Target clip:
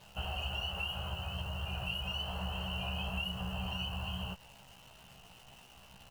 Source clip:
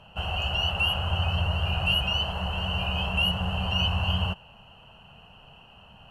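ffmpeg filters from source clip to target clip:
ffmpeg -i in.wav -filter_complex "[0:a]acompressor=threshold=-28dB:ratio=12,acrusher=bits=9:dc=4:mix=0:aa=0.000001,asplit=2[link_01][link_02];[link_02]adelay=16,volume=-3dB[link_03];[link_01][link_03]amix=inputs=2:normalize=0,volume=-7.5dB" out.wav

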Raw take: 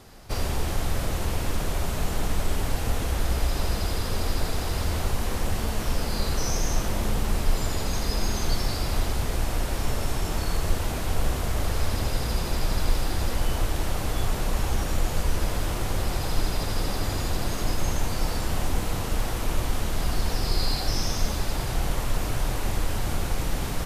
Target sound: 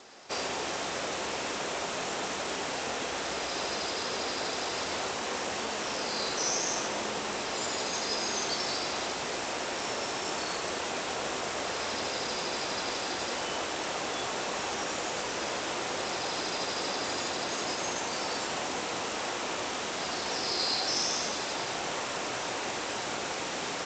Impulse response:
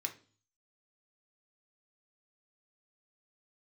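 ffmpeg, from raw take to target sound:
-filter_complex "[0:a]highpass=360,asplit=2[link_01][link_02];[1:a]atrim=start_sample=2205,highshelf=frequency=4600:gain=9.5[link_03];[link_02][link_03]afir=irnorm=-1:irlink=0,volume=-11dB[link_04];[link_01][link_04]amix=inputs=2:normalize=0" -ar 16000 -c:a g722

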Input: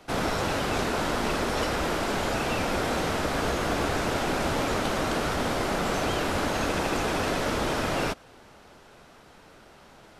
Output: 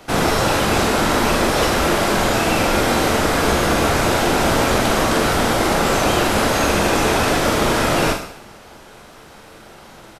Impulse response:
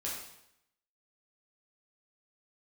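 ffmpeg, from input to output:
-filter_complex "[0:a]asplit=2[link_01][link_02];[link_02]adelay=43,volume=-7.5dB[link_03];[link_01][link_03]amix=inputs=2:normalize=0,asplit=2[link_04][link_05];[1:a]atrim=start_sample=2205,highshelf=frequency=7300:gain=11.5[link_06];[link_05][link_06]afir=irnorm=-1:irlink=0,volume=-5dB[link_07];[link_04][link_07]amix=inputs=2:normalize=0,volume=6dB"

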